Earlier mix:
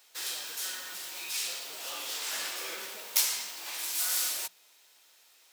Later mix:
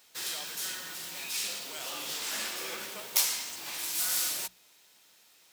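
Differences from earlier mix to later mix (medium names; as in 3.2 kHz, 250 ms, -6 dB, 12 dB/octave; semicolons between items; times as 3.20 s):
speech: remove boxcar filter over 41 samples; background: remove high-pass 410 Hz 12 dB/octave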